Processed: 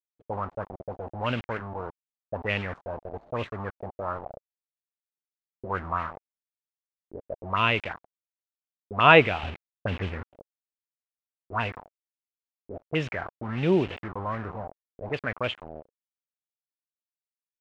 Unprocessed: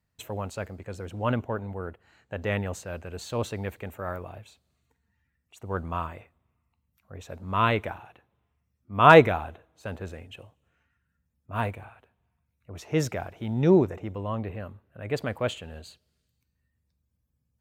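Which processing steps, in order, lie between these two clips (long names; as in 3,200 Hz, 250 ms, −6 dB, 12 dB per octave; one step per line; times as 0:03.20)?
0:09.43–0:10.23: low-shelf EQ 440 Hz +11 dB
bit-depth reduction 6 bits, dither none
envelope-controlled low-pass 340–2,800 Hz up, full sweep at −23.5 dBFS
level −3.5 dB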